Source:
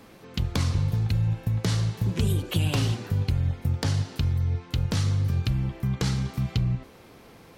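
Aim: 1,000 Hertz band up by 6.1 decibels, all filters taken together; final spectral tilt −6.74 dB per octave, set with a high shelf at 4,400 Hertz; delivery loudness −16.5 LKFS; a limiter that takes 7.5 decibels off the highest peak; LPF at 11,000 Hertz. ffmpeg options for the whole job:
ffmpeg -i in.wav -af "lowpass=11000,equalizer=frequency=1000:width_type=o:gain=8,highshelf=frequency=4400:gain=-7,volume=12.5dB,alimiter=limit=-7dB:level=0:latency=1" out.wav

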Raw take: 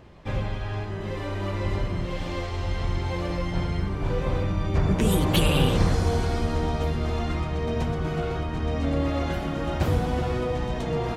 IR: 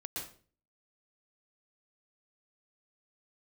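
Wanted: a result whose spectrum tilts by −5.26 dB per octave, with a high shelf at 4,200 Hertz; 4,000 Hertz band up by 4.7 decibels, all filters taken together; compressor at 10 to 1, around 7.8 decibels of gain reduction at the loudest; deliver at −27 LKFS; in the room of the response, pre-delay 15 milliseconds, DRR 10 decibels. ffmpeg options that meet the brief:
-filter_complex "[0:a]equalizer=frequency=4000:width_type=o:gain=3.5,highshelf=frequency=4200:gain=5.5,acompressor=threshold=-23dB:ratio=10,asplit=2[link_01][link_02];[1:a]atrim=start_sample=2205,adelay=15[link_03];[link_02][link_03]afir=irnorm=-1:irlink=0,volume=-10dB[link_04];[link_01][link_04]amix=inputs=2:normalize=0,volume=2dB"

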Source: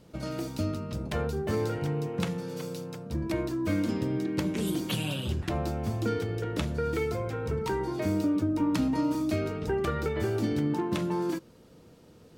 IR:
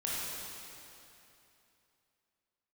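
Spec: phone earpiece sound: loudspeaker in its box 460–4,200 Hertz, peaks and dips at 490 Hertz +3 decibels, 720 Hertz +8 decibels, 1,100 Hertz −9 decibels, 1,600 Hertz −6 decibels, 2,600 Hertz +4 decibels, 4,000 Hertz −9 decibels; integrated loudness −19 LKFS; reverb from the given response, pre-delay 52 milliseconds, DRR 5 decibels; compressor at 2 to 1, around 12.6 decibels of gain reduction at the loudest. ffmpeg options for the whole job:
-filter_complex "[0:a]acompressor=threshold=-48dB:ratio=2,asplit=2[link_01][link_02];[1:a]atrim=start_sample=2205,adelay=52[link_03];[link_02][link_03]afir=irnorm=-1:irlink=0,volume=-10.5dB[link_04];[link_01][link_04]amix=inputs=2:normalize=0,highpass=460,equalizer=frequency=490:width_type=q:width=4:gain=3,equalizer=frequency=720:width_type=q:width=4:gain=8,equalizer=frequency=1100:width_type=q:width=4:gain=-9,equalizer=frequency=1600:width_type=q:width=4:gain=-6,equalizer=frequency=2600:width_type=q:width=4:gain=4,equalizer=frequency=4000:width_type=q:width=4:gain=-9,lowpass=frequency=4200:width=0.5412,lowpass=frequency=4200:width=1.3066,volume=26.5dB"

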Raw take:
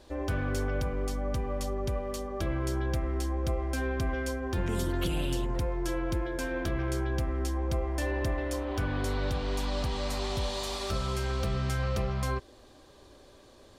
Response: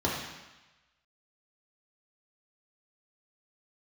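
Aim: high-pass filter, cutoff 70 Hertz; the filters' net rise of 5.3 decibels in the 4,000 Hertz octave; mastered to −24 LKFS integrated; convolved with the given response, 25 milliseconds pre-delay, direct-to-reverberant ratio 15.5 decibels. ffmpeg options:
-filter_complex "[0:a]highpass=70,equalizer=frequency=4000:width_type=o:gain=6.5,asplit=2[link_01][link_02];[1:a]atrim=start_sample=2205,adelay=25[link_03];[link_02][link_03]afir=irnorm=-1:irlink=0,volume=-26dB[link_04];[link_01][link_04]amix=inputs=2:normalize=0,volume=8.5dB"

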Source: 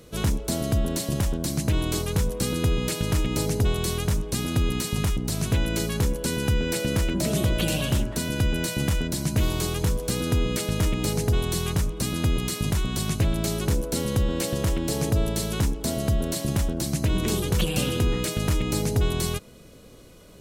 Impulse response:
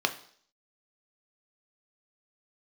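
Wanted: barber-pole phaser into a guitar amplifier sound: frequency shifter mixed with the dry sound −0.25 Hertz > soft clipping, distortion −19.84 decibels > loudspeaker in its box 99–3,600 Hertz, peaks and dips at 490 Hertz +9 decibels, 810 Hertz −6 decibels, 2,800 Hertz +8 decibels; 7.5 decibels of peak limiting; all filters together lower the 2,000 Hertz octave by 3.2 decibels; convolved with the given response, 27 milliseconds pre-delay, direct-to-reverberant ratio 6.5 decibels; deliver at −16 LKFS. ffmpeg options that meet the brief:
-filter_complex "[0:a]equalizer=frequency=2000:width_type=o:gain=-8.5,alimiter=limit=-19.5dB:level=0:latency=1,asplit=2[link_01][link_02];[1:a]atrim=start_sample=2205,adelay=27[link_03];[link_02][link_03]afir=irnorm=-1:irlink=0,volume=-16.5dB[link_04];[link_01][link_04]amix=inputs=2:normalize=0,asplit=2[link_05][link_06];[link_06]afreqshift=-0.25[link_07];[link_05][link_07]amix=inputs=2:normalize=1,asoftclip=threshold=-22.5dB,highpass=99,equalizer=frequency=490:width_type=q:width=4:gain=9,equalizer=frequency=810:width_type=q:width=4:gain=-6,equalizer=frequency=2800:width_type=q:width=4:gain=8,lowpass=frequency=3600:width=0.5412,lowpass=frequency=3600:width=1.3066,volume=17dB"

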